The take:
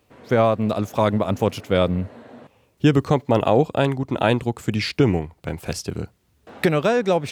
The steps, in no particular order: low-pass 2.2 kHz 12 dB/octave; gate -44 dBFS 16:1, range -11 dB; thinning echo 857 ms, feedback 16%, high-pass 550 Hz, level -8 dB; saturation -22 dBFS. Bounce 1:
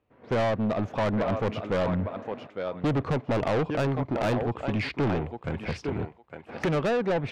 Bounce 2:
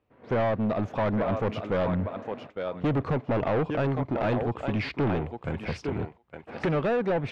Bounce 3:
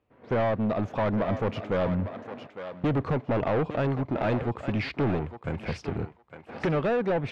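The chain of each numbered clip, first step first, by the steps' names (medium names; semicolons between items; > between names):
low-pass > gate > thinning echo > saturation; thinning echo > saturation > gate > low-pass; saturation > low-pass > gate > thinning echo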